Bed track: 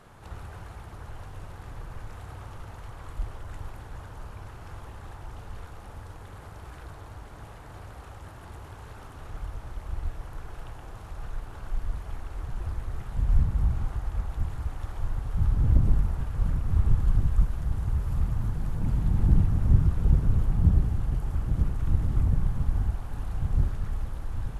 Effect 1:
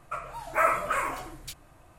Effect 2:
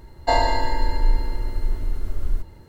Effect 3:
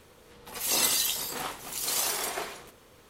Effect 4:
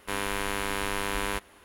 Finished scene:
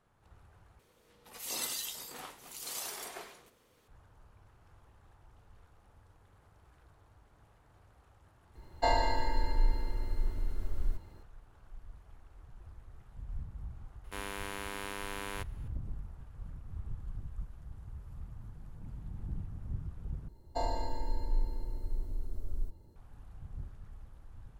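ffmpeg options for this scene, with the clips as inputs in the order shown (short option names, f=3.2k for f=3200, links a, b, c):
-filter_complex "[2:a]asplit=2[a][b];[0:a]volume=-19dB[c];[4:a]highpass=110[d];[b]equalizer=f=2.1k:w=0.76:g=-14[e];[c]asplit=3[f][g][h];[f]atrim=end=0.794[i];[3:a]atrim=end=3.09,asetpts=PTS-STARTPTS,volume=-11.5dB[j];[g]atrim=start=3.876:end=20.284[k];[e]atrim=end=2.68,asetpts=PTS-STARTPTS,volume=-12dB[l];[h]atrim=start=22.956[m];[a]atrim=end=2.68,asetpts=PTS-STARTPTS,volume=-9dB,afade=t=in:d=0.004:c=hsin,afade=t=out:st=2.676:d=0.004:c=hsin,adelay=8550[n];[d]atrim=end=1.64,asetpts=PTS-STARTPTS,volume=-10dB,afade=t=in:d=0.004:c=hsin,afade=t=out:st=1.636:d=0.004:c=hsin,adelay=14040[o];[i][j]acrossfade=d=0.004:c1=hsin:c2=hsin[p];[p][k]acrossfade=d=0.004:c1=hsin:c2=hsin[q];[q][l]acrossfade=d=0.004:c1=hsin:c2=hsin[r];[r][m]acrossfade=d=0.004:c1=hsin:c2=hsin[s];[s][n][o]amix=inputs=3:normalize=0"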